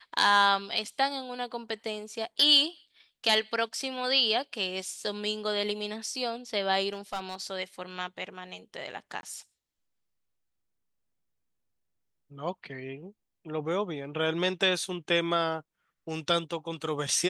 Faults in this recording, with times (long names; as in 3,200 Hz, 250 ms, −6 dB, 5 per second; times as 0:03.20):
0:06.93–0:07.35: clipping −28.5 dBFS
0:09.21–0:09.23: drop-out 21 ms